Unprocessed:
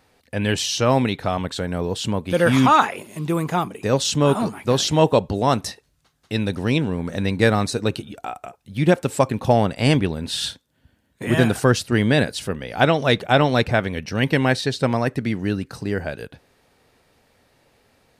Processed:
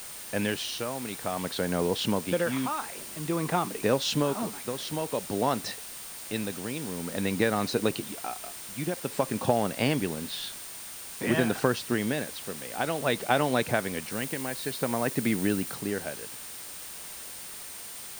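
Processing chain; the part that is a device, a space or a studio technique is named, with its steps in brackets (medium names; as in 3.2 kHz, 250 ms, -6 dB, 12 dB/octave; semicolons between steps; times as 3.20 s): medium wave at night (band-pass 170–4200 Hz; compression, threshold -20 dBFS, peak gain reduction 10.5 dB; tremolo 0.52 Hz, depth 68%; whistle 9 kHz -45 dBFS; white noise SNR 12 dB); 14.11–15.75 s: treble shelf 11 kHz +5.5 dB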